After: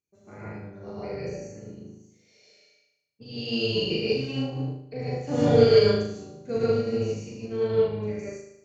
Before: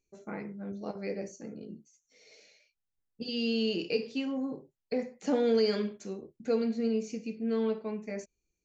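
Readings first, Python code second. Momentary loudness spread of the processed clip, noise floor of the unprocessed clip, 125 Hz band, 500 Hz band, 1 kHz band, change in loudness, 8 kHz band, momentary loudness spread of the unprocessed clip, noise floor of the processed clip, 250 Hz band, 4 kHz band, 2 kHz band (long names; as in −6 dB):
21 LU, −85 dBFS, +17.0 dB, +8.0 dB, +7.0 dB, +7.5 dB, can't be measured, 14 LU, −68 dBFS, +2.0 dB, +7.0 dB, +5.5 dB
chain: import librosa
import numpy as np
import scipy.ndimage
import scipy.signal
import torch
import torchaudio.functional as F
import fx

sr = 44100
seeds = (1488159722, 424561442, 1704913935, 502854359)

y = fx.octave_divider(x, sr, octaves=1, level_db=-2.0)
y = scipy.signal.sosfilt(scipy.signal.butter(2, 64.0, 'highpass', fs=sr, output='sos'), y)
y = fx.room_flutter(y, sr, wall_m=6.5, rt60_s=0.87)
y = fx.rev_gated(y, sr, seeds[0], gate_ms=180, shape='rising', drr_db=-6.0)
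y = fx.upward_expand(y, sr, threshold_db=-33.0, expansion=1.5)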